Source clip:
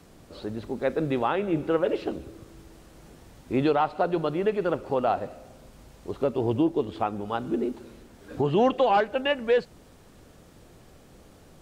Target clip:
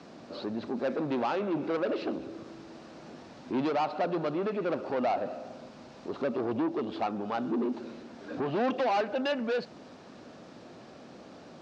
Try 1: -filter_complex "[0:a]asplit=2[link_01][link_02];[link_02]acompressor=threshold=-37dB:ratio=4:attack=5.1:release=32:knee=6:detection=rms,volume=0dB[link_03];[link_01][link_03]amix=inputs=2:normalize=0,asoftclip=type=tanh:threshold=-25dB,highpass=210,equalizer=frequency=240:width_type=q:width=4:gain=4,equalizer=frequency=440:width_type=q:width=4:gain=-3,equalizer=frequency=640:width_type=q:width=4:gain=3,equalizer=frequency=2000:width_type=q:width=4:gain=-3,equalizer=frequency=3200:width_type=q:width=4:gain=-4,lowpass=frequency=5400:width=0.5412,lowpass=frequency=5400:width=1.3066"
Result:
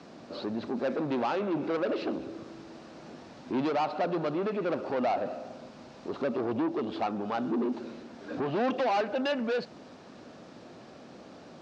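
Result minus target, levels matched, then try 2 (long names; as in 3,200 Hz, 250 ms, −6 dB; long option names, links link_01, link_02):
downward compressor: peak gain reduction −5.5 dB
-filter_complex "[0:a]asplit=2[link_01][link_02];[link_02]acompressor=threshold=-44.5dB:ratio=4:attack=5.1:release=32:knee=6:detection=rms,volume=0dB[link_03];[link_01][link_03]amix=inputs=2:normalize=0,asoftclip=type=tanh:threshold=-25dB,highpass=210,equalizer=frequency=240:width_type=q:width=4:gain=4,equalizer=frequency=440:width_type=q:width=4:gain=-3,equalizer=frequency=640:width_type=q:width=4:gain=3,equalizer=frequency=2000:width_type=q:width=4:gain=-3,equalizer=frequency=3200:width_type=q:width=4:gain=-4,lowpass=frequency=5400:width=0.5412,lowpass=frequency=5400:width=1.3066"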